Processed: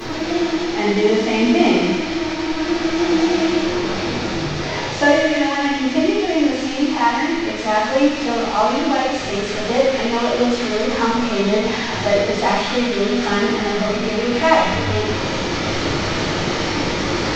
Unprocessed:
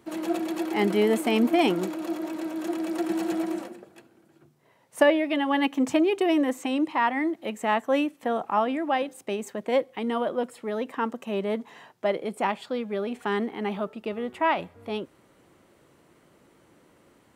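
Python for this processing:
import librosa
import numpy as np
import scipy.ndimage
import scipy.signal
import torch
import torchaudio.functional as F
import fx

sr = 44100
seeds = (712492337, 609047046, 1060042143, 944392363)

p1 = fx.delta_mod(x, sr, bps=32000, step_db=-26.5)
p2 = fx.rider(p1, sr, range_db=4, speed_s=2.0)
p3 = p2 + fx.echo_wet_highpass(p2, sr, ms=95, feedback_pct=77, hz=1900.0, wet_db=-5, dry=0)
p4 = fx.room_shoebox(p3, sr, seeds[0], volume_m3=260.0, walls='mixed', distance_m=3.8)
y = p4 * librosa.db_to_amplitude(-4.0)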